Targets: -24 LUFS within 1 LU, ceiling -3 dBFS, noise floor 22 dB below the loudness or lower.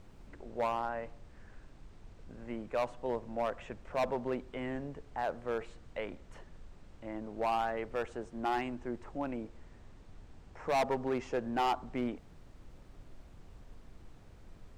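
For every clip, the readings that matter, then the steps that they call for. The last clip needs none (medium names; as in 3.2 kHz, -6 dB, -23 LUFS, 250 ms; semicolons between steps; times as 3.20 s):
clipped samples 1.2%; clipping level -26.0 dBFS; noise floor -56 dBFS; noise floor target -59 dBFS; loudness -36.5 LUFS; peak level -26.0 dBFS; loudness target -24.0 LUFS
-> clip repair -26 dBFS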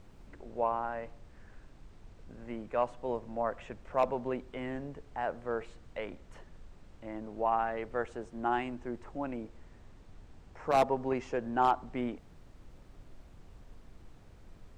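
clipped samples 0.0%; noise floor -56 dBFS; noise floor target -57 dBFS
-> noise print and reduce 6 dB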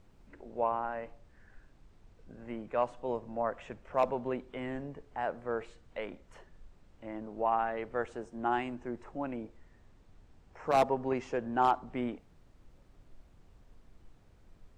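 noise floor -62 dBFS; loudness -34.5 LUFS; peak level -17.0 dBFS; loudness target -24.0 LUFS
-> trim +10.5 dB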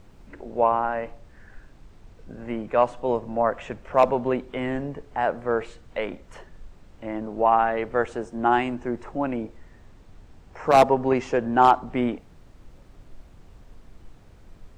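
loudness -24.0 LUFS; peak level -6.5 dBFS; noise floor -51 dBFS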